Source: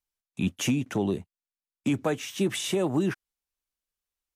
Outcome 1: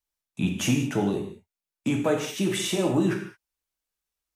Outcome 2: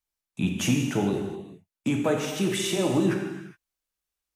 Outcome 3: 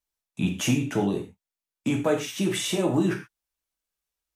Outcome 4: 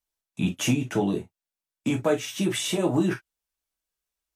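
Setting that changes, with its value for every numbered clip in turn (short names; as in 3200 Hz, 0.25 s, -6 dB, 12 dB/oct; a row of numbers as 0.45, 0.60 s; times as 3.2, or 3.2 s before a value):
non-linear reverb, gate: 240, 440, 150, 80 ms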